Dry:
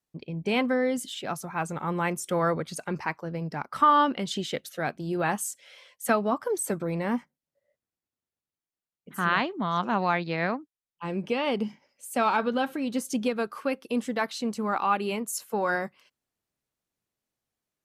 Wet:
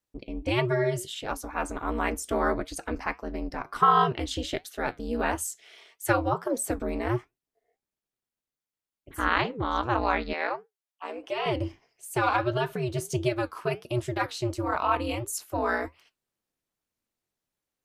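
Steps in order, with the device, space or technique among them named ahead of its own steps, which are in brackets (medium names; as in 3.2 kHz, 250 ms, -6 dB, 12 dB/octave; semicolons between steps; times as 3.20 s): alien voice (ring modulator 120 Hz; flange 1.5 Hz, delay 5.3 ms, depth 4.4 ms, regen -77%); 10.33–11.46 s: Chebyshev high-pass 570 Hz, order 2; trim +7 dB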